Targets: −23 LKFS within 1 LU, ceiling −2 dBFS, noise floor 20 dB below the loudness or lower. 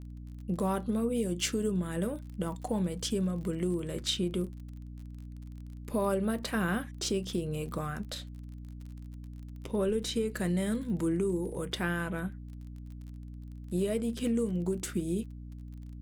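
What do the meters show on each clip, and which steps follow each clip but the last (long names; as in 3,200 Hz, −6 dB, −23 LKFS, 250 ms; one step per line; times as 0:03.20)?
crackle rate 30 per second; mains hum 60 Hz; hum harmonics up to 300 Hz; level of the hum −42 dBFS; integrated loudness −32.5 LKFS; sample peak −17.5 dBFS; target loudness −23.0 LKFS
→ click removal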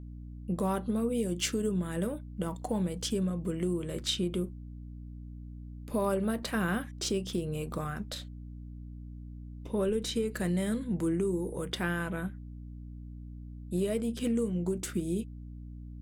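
crackle rate 0.19 per second; mains hum 60 Hz; hum harmonics up to 300 Hz; level of the hum −42 dBFS
→ hum removal 60 Hz, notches 5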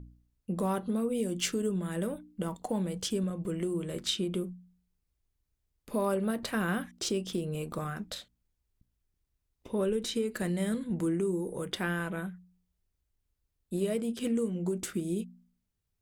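mains hum none found; integrated loudness −33.0 LKFS; sample peak −18.0 dBFS; target loudness −23.0 LKFS
→ level +10 dB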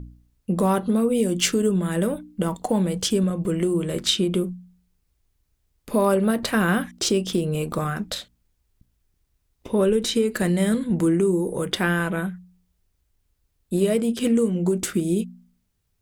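integrated loudness −23.0 LKFS; sample peak −8.0 dBFS; background noise floor −72 dBFS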